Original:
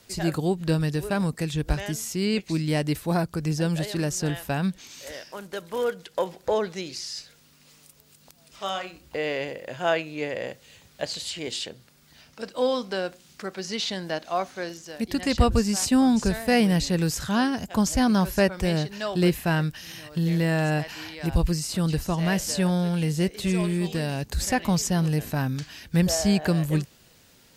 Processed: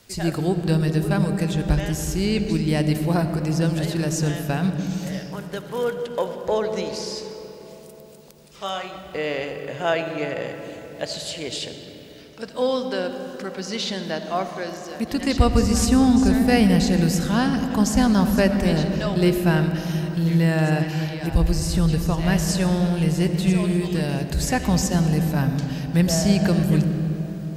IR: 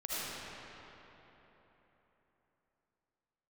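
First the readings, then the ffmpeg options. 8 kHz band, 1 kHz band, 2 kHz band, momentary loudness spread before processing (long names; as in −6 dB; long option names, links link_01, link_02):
+1.5 dB, +2.0 dB, +2.0 dB, 13 LU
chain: -filter_complex "[0:a]asplit=2[link_01][link_02];[1:a]atrim=start_sample=2205,lowshelf=frequency=320:gain=10.5[link_03];[link_02][link_03]afir=irnorm=-1:irlink=0,volume=-12dB[link_04];[link_01][link_04]amix=inputs=2:normalize=0"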